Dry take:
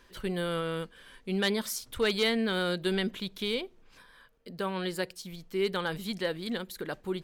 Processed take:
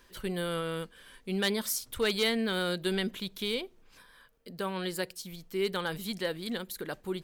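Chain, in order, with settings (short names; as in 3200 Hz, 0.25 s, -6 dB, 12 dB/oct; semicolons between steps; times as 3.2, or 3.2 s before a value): high shelf 7700 Hz +8.5 dB; gain -1.5 dB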